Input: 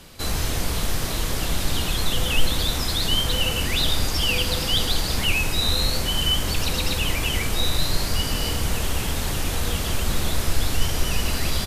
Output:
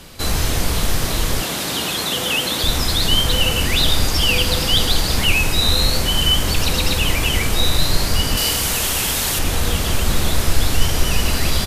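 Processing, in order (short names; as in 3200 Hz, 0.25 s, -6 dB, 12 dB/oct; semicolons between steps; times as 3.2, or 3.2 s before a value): 1.42–2.64 HPF 200 Hz 12 dB/oct; 8.37–9.39 tilt +2 dB/oct; gain +5.5 dB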